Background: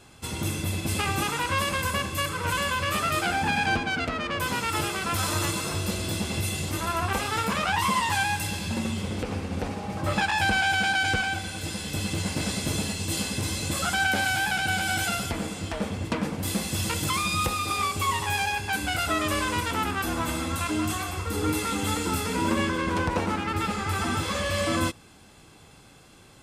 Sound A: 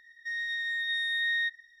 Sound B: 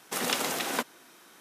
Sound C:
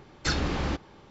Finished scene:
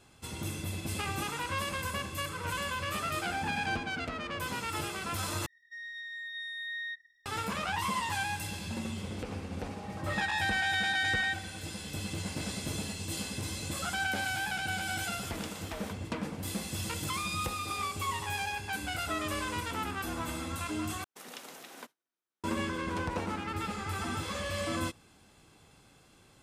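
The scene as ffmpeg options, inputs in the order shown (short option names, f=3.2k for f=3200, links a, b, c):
-filter_complex "[1:a]asplit=2[a][b];[2:a]asplit=2[c][d];[0:a]volume=-8dB[e];[b]aresample=11025,aresample=44100[f];[d]agate=range=-33dB:threshold=-42dB:ratio=3:release=100:detection=peak[g];[e]asplit=3[h][i][j];[h]atrim=end=5.464[k];[a]atrim=end=1.8,asetpts=PTS-STARTPTS,volume=-9.5dB[l];[i]atrim=start=7.256:end=21.044[m];[g]atrim=end=1.4,asetpts=PTS-STARTPTS,volume=-17.5dB[n];[j]atrim=start=22.436[o];[f]atrim=end=1.8,asetpts=PTS-STARTPTS,volume=-3.5dB,afade=t=in:d=0.004:c=hsin,afade=t=out:st=1.796:d=0.004:c=hsin,adelay=9840[p];[c]atrim=end=1.4,asetpts=PTS-STARTPTS,volume=-16dB,afade=t=in:d=0.004:c=hsin,afade=t=out:st=1.396:d=0.004:c=hsin,adelay=15110[q];[k][l]acrossfade=d=0.004:c1=hsin:c2=hsin[r];[r][m]acrossfade=d=0.004:c1=hsin:c2=hsin[s];[s][n]acrossfade=d=0.004:c1=hsin:c2=hsin[t];[t][o]acrossfade=d=0.004:c1=hsin:c2=hsin[u];[u][p][q]amix=inputs=3:normalize=0"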